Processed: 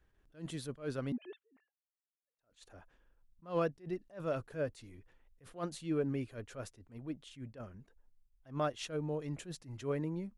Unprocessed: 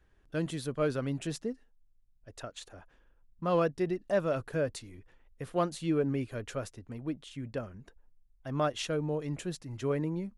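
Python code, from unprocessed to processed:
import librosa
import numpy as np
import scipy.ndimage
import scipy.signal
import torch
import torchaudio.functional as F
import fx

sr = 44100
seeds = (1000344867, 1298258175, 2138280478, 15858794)

y = fx.sine_speech(x, sr, at=(1.12, 2.39))
y = fx.attack_slew(y, sr, db_per_s=210.0)
y = F.gain(torch.from_numpy(y), -4.5).numpy()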